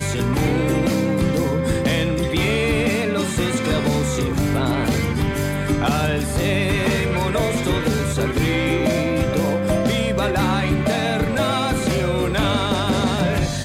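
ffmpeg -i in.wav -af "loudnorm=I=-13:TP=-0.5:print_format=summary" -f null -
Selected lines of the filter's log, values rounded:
Input Integrated:    -20.1 LUFS
Input True Peak:      -8.0 dBTP
Input LRA:             0.6 LU
Input Threshold:     -30.1 LUFS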